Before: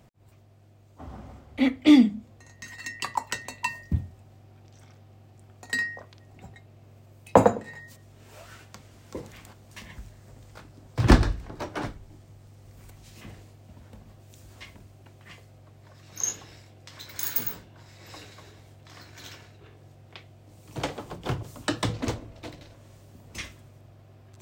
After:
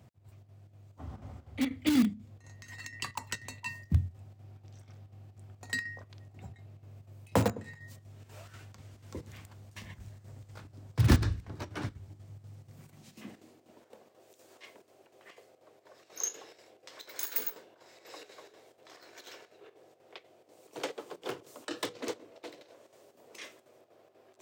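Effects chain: square tremolo 4.1 Hz, depth 60%, duty 75%; in parallel at -8.5 dB: integer overflow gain 16.5 dB; on the sum: dynamic bell 700 Hz, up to -7 dB, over -44 dBFS, Q 0.89; high-pass sweep 86 Hz -> 440 Hz, 12.32–13.91 s; trim -7 dB

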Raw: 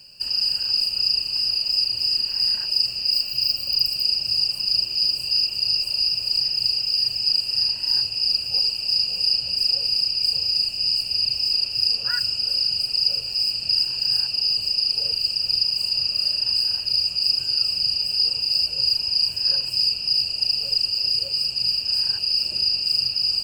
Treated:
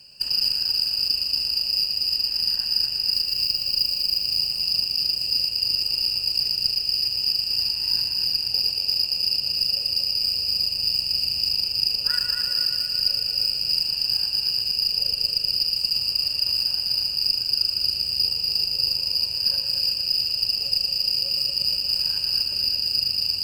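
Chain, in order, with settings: multi-head delay 117 ms, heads first and second, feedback 68%, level -6.5 dB; gain riding; Chebyshev shaper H 2 -24 dB, 7 -25 dB, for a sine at -5.5 dBFS; trim -3 dB

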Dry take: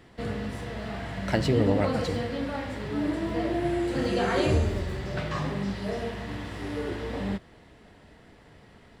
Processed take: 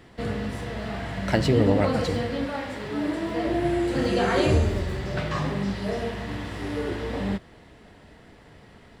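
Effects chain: 2.46–3.46 s: bass shelf 160 Hz -9.5 dB; trim +3 dB

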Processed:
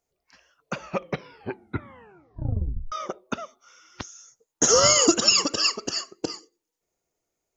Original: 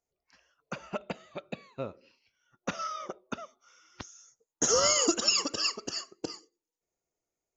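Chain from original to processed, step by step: 0.78 s: tape stop 2.14 s; 4.83–5.46 s: peaking EQ 120 Hz +11 dB 0.93 oct; trim +7 dB

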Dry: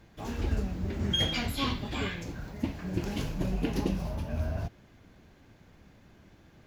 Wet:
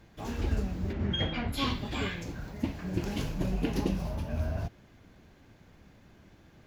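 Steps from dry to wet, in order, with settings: 0.92–1.52 s: low-pass 3.6 kHz -> 1.7 kHz 12 dB/octave

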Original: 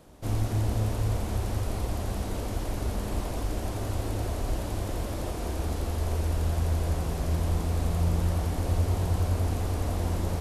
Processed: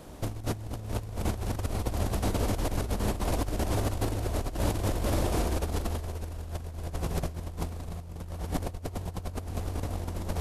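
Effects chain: compressor with a negative ratio -32 dBFS, ratio -0.5; trim +2 dB

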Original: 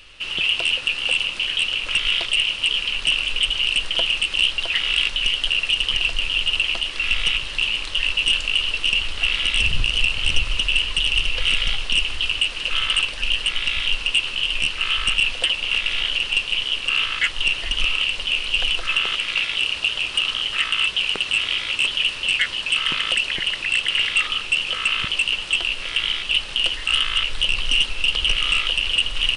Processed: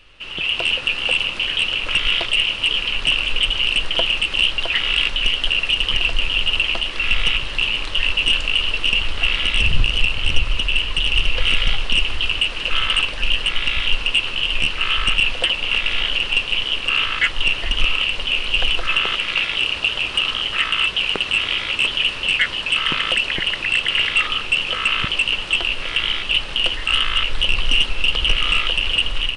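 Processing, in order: treble shelf 3 kHz -11 dB; level rider gain up to 7 dB

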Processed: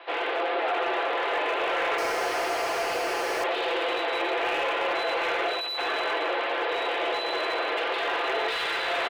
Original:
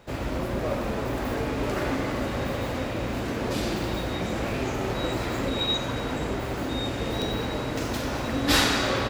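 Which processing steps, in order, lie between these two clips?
tilt EQ +2.5 dB/octave; comb 5.8 ms, depth 58%; in parallel at +1 dB: compressor with a negative ratio -28 dBFS, ratio -0.5; on the sum: saturation -21.5 dBFS, distortion -11 dB; mistuned SSB +160 Hz 180–3300 Hz; 1.98–3.44 s: careless resampling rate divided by 6×, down filtered, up hold; slew-rate limiter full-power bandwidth 130 Hz

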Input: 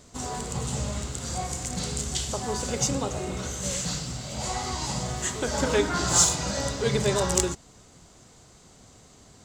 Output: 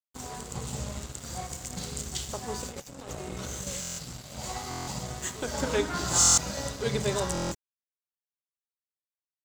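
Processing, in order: 2.65–3.67 s: compressor with a negative ratio -33 dBFS, ratio -1; crossover distortion -39 dBFS; buffer glitch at 3.80/4.69/6.19/7.33 s, samples 1024, times 7; trim -3 dB

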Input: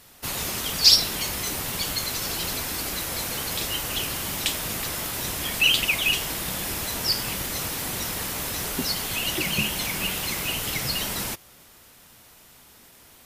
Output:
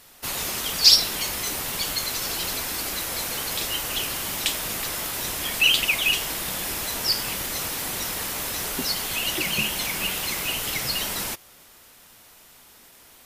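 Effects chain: peaking EQ 100 Hz -6 dB 2.9 oct; trim +1 dB

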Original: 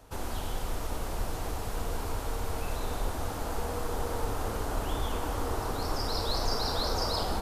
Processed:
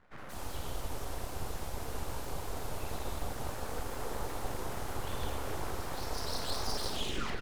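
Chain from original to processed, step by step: tape stop on the ending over 0.73 s; doubling 47 ms -10.5 dB; three bands offset in time mids, highs, lows 180/210 ms, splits 190/1600 Hz; full-wave rectifier; on a send at -10 dB: reverberation RT60 3.5 s, pre-delay 6 ms; on the sum: trim -3.5 dB

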